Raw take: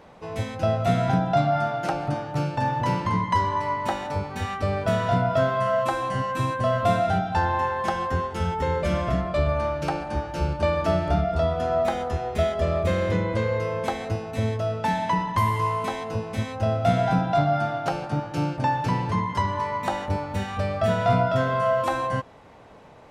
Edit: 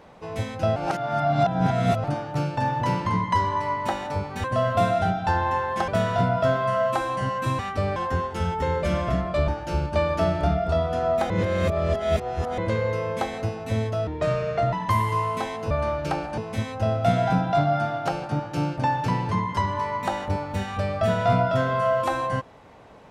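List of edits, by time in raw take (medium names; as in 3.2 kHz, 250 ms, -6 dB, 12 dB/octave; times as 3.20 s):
0.76–2.04 s: reverse
4.44–4.81 s: swap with 6.52–7.96 s
9.48–10.15 s: move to 16.18 s
11.97–13.25 s: reverse
14.74–15.20 s: speed 70%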